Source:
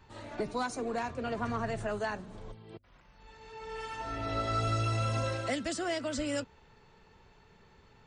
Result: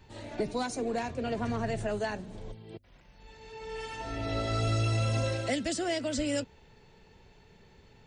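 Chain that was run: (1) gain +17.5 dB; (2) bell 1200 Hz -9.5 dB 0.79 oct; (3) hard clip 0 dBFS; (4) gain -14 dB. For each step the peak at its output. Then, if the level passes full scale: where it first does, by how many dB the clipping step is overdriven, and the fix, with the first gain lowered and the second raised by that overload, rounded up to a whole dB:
-4.0, -5.5, -5.5, -19.5 dBFS; no overload

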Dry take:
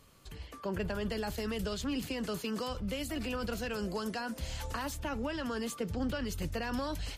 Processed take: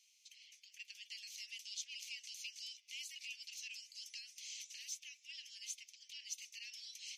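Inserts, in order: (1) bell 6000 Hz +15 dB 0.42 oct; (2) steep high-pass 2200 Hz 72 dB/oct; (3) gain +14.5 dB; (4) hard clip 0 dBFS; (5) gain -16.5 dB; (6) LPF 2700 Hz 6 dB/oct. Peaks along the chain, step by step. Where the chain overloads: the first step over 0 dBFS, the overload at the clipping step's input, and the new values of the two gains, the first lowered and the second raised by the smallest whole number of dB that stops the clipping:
-19.5, -19.5, -5.0, -5.0, -21.5, -29.5 dBFS; no overload

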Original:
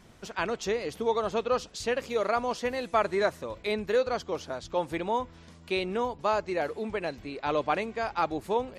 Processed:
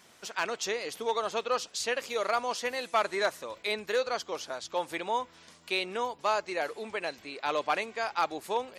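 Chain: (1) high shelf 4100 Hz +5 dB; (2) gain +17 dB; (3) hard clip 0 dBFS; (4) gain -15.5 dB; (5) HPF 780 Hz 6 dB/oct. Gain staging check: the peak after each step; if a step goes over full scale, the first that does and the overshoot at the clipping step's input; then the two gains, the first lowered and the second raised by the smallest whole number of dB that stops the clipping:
-12.0, +5.0, 0.0, -15.5, -13.0 dBFS; step 2, 5.0 dB; step 2 +12 dB, step 4 -10.5 dB

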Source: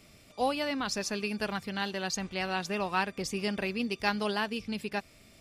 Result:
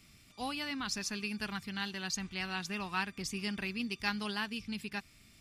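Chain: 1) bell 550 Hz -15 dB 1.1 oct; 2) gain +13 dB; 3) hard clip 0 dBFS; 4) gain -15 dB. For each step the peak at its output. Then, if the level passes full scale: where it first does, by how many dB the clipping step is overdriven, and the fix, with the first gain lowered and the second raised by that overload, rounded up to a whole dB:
-16.0, -3.0, -3.0, -18.0 dBFS; no overload

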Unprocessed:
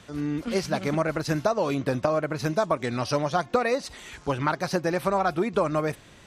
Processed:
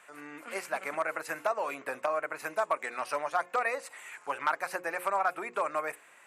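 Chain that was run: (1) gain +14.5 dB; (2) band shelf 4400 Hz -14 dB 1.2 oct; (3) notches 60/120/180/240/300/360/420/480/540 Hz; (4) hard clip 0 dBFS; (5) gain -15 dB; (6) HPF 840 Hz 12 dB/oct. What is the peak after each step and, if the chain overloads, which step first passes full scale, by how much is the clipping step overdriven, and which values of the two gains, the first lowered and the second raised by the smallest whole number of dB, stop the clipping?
+5.0, +5.0, +5.0, 0.0, -15.0, -14.5 dBFS; step 1, 5.0 dB; step 1 +9.5 dB, step 5 -10 dB

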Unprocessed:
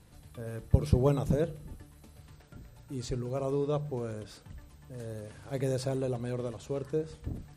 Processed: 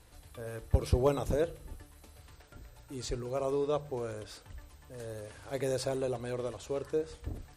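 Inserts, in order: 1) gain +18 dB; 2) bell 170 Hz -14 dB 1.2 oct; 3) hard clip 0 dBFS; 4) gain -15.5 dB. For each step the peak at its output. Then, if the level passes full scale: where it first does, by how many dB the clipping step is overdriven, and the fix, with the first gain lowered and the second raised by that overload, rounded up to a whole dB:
+9.5, +4.5, 0.0, -15.5 dBFS; step 1, 4.5 dB; step 1 +13 dB, step 4 -10.5 dB

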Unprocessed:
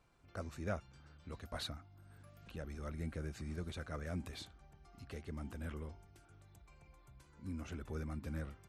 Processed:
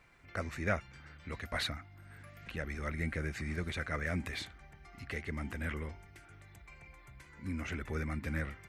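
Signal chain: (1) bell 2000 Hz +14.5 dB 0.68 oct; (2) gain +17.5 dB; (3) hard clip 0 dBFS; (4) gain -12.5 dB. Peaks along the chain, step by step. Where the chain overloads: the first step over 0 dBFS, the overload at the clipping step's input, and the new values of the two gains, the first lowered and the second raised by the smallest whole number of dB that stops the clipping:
-21.5, -4.0, -4.0, -16.5 dBFS; no overload

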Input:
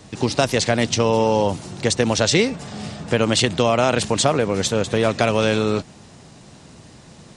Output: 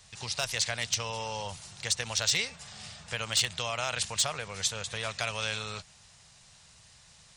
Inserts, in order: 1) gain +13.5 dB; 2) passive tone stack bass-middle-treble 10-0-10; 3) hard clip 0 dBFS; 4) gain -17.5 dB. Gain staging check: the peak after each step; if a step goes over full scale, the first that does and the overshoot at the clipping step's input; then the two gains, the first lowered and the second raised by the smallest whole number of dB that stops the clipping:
+11.0, +10.0, 0.0, -17.5 dBFS; step 1, 10.0 dB; step 1 +3.5 dB, step 4 -7.5 dB

